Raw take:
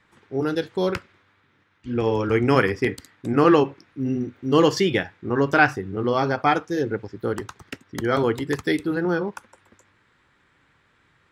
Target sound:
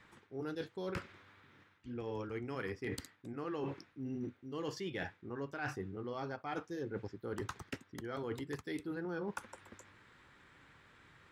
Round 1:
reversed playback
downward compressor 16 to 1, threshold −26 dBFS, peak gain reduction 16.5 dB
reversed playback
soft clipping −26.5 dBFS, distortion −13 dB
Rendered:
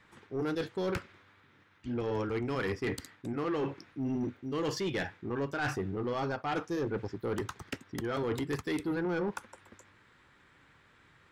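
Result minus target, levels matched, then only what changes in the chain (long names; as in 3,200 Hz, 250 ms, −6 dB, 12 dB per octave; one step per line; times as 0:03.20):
downward compressor: peak gain reduction −10.5 dB
change: downward compressor 16 to 1, threshold −37 dBFS, peak gain reduction 26.5 dB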